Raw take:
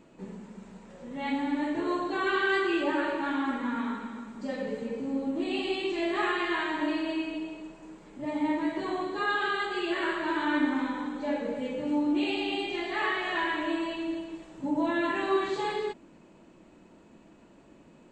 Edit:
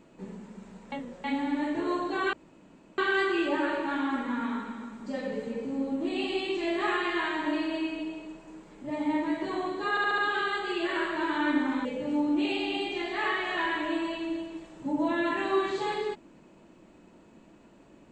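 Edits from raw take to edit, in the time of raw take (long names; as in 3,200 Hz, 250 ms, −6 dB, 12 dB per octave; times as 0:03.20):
0:00.92–0:01.24: reverse
0:02.33: splice in room tone 0.65 s
0:09.25: stutter 0.07 s, 5 plays
0:10.92–0:11.63: remove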